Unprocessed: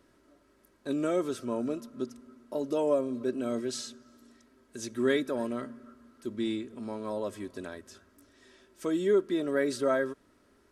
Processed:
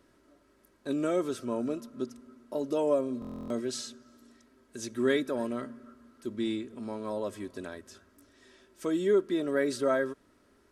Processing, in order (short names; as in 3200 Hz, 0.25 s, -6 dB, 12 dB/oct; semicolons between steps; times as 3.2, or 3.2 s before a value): stuck buffer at 3.2, samples 1024, times 12